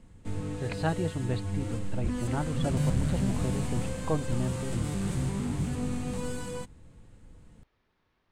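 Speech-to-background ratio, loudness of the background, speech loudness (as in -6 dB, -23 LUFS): -1.5 dB, -33.0 LUFS, -34.5 LUFS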